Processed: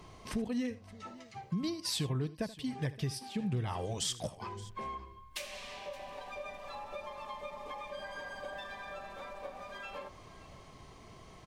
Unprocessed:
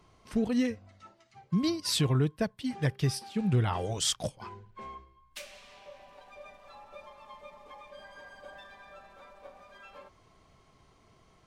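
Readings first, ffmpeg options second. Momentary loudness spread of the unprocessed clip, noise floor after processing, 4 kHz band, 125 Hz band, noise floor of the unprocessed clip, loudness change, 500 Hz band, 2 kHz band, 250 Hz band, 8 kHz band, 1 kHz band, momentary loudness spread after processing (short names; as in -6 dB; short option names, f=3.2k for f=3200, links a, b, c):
22 LU, -54 dBFS, -5.0 dB, -7.0 dB, -63 dBFS, -9.5 dB, -4.0 dB, -1.0 dB, -6.5 dB, -5.0 dB, -0.5 dB, 14 LU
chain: -filter_complex "[0:a]bandreject=f=1.4k:w=9.2,acompressor=threshold=-49dB:ratio=2.5,asplit=2[a][b];[b]aecho=0:1:79|571:0.141|0.106[c];[a][c]amix=inputs=2:normalize=0,volume=8.5dB"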